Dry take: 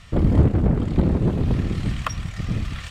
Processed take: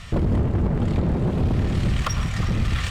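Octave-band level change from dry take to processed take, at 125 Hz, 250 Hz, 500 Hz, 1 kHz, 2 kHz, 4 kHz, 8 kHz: −1.0 dB, −2.0 dB, −1.5 dB, +1.0 dB, +3.5 dB, +4.5 dB, can't be measured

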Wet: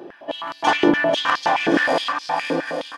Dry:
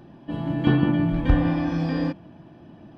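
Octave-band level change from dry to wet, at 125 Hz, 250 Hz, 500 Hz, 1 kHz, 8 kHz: −15.0 dB, −1.0 dB, +10.5 dB, +14.5 dB, can't be measured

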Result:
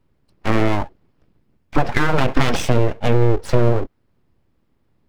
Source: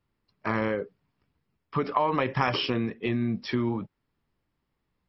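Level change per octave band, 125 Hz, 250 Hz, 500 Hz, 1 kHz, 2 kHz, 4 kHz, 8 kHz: +13.5 dB, +7.0 dB, +10.0 dB, +5.5 dB, +8.0 dB, +4.0 dB, can't be measured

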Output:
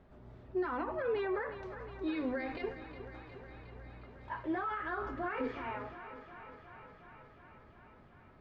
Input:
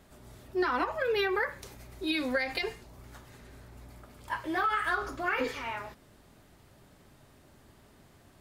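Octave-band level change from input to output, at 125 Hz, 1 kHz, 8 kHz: −1.0 dB, −6.5 dB, below −25 dB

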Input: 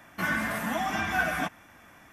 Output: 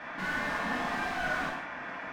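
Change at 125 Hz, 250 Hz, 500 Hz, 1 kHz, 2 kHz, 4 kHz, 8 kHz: −6.5, −5.0, −2.0, −2.5, −2.5, −2.5, −8.5 decibels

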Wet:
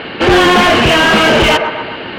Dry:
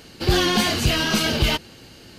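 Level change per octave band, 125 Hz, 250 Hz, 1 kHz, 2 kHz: +4.5, +10.5, +16.5, +15.0 decibels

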